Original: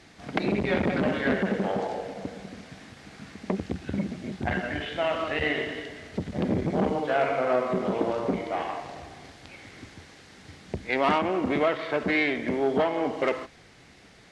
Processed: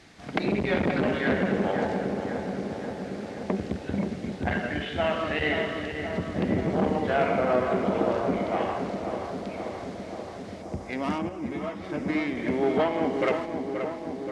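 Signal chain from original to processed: 10.62–12.37 s: time-frequency box 350–4700 Hz -9 dB; filtered feedback delay 529 ms, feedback 75%, low-pass 2 kHz, level -6.5 dB; 11.29–11.84 s: three-phase chorus

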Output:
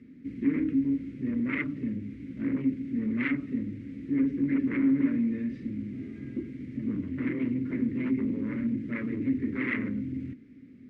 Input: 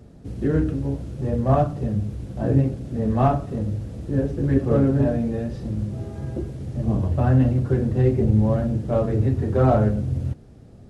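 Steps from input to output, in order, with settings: sine folder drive 12 dB, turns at -5.5 dBFS; two resonant band-passes 750 Hz, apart 3 oct; trim -8 dB

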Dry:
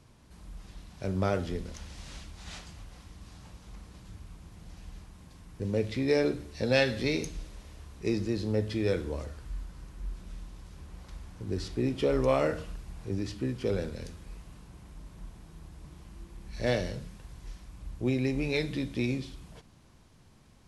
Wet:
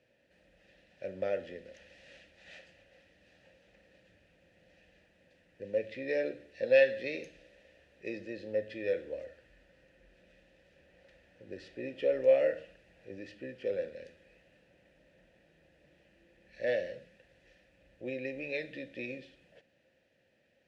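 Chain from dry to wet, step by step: vowel filter e; peaking EQ 440 Hz -7.5 dB 0.45 oct; trim +7.5 dB

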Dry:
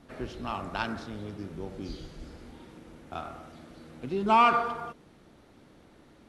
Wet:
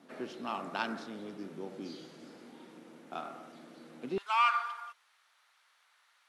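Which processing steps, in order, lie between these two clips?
high-pass 190 Hz 24 dB/octave, from 4.18 s 1.1 kHz; trim -2.5 dB

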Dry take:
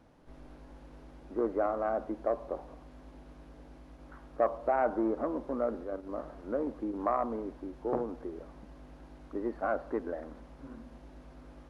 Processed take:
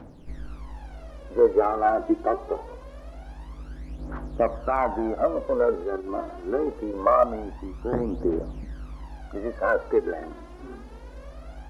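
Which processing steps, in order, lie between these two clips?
phaser 0.24 Hz, delay 3 ms, feedback 73%; trim +6.5 dB

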